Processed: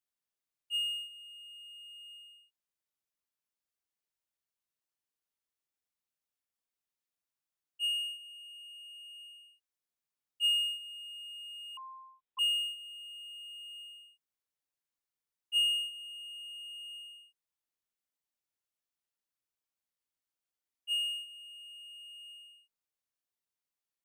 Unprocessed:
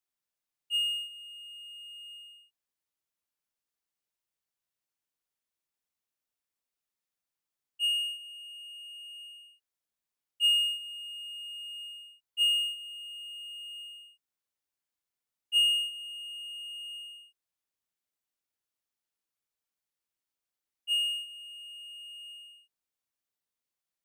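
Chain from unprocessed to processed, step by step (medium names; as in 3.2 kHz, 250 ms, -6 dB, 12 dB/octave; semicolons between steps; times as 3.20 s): 11.77–12.39 s: frequency inversion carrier 3.9 kHz; trim -4 dB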